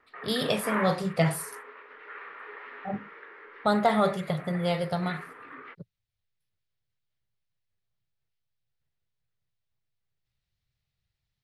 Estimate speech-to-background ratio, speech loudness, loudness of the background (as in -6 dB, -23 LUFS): 12.5 dB, -28.0 LUFS, -40.5 LUFS